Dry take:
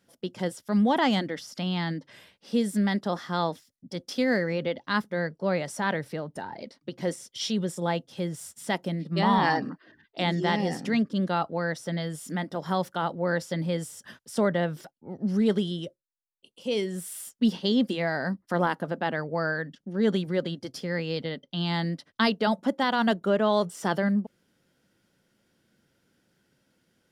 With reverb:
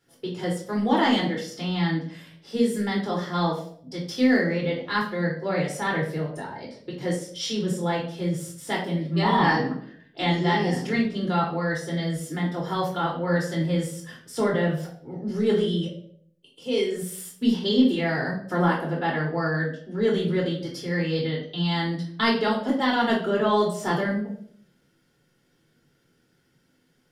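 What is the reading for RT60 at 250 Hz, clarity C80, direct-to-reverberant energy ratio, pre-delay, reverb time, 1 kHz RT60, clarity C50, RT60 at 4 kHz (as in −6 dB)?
0.75 s, 10.5 dB, −3.5 dB, 3 ms, 0.60 s, 0.50 s, 6.0 dB, 0.45 s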